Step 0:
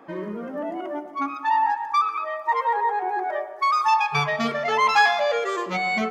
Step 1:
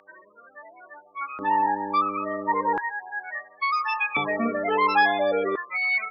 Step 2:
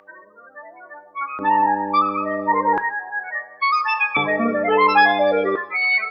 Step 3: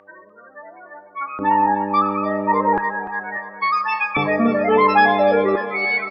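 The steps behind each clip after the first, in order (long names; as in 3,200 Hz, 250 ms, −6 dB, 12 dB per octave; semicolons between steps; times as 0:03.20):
spectral peaks only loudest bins 16; hum with harmonics 100 Hz, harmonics 6, −34 dBFS −3 dB per octave; auto-filter high-pass square 0.36 Hz 280–1,700 Hz; level −2.5 dB
coupled-rooms reverb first 0.58 s, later 2.3 s, from −18 dB, DRR 11.5 dB; level +5.5 dB
spectral tilt −2 dB per octave; on a send: repeating echo 295 ms, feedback 56%, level −13 dB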